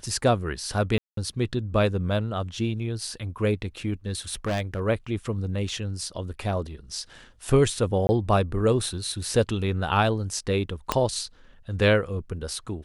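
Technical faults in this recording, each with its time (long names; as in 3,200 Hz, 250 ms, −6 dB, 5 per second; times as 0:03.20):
0:00.98–0:01.17: drop-out 193 ms
0:04.06–0:04.81: clipping −23 dBFS
0:05.69: drop-out 2.2 ms
0:08.07–0:08.09: drop-out 20 ms
0:10.92: click −7 dBFS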